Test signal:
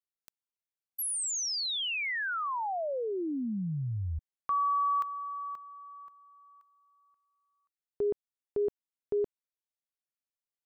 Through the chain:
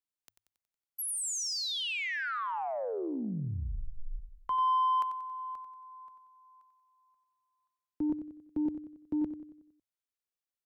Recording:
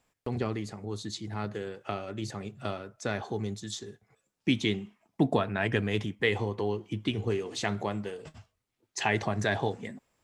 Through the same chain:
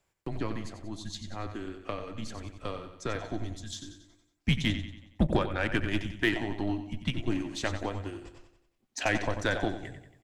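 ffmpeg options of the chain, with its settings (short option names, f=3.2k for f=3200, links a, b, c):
-af "aecho=1:1:92|184|276|368|460|552:0.355|0.174|0.0852|0.0417|0.0205|0.01,afreqshift=-110,aeval=exprs='0.251*(cos(1*acos(clip(val(0)/0.251,-1,1)))-cos(1*PI/2))+0.00794*(cos(5*acos(clip(val(0)/0.251,-1,1)))-cos(5*PI/2))+0.0158*(cos(7*acos(clip(val(0)/0.251,-1,1)))-cos(7*PI/2))':c=same"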